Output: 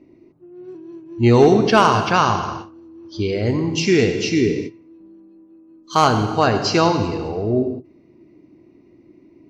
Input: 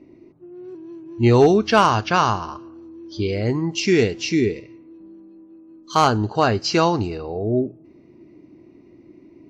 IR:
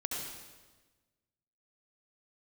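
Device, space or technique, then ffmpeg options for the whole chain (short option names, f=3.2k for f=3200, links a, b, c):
keyed gated reverb: -filter_complex "[0:a]asplit=3[a][b][c];[1:a]atrim=start_sample=2205[d];[b][d]afir=irnorm=-1:irlink=0[e];[c]apad=whole_len=418841[f];[e][f]sidechaingate=range=-28dB:threshold=-37dB:ratio=16:detection=peak,volume=-5.5dB[g];[a][g]amix=inputs=2:normalize=0,volume=-2dB"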